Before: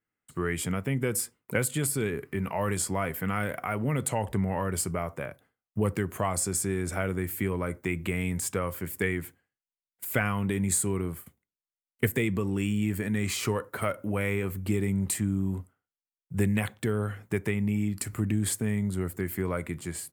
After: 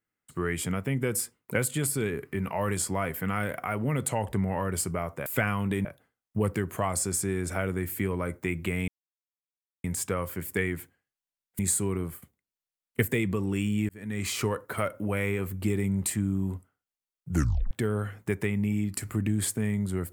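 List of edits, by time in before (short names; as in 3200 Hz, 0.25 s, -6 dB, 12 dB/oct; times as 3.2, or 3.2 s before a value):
8.29 insert silence 0.96 s
10.04–10.63 move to 5.26
12.93–13.34 fade in
16.34 tape stop 0.41 s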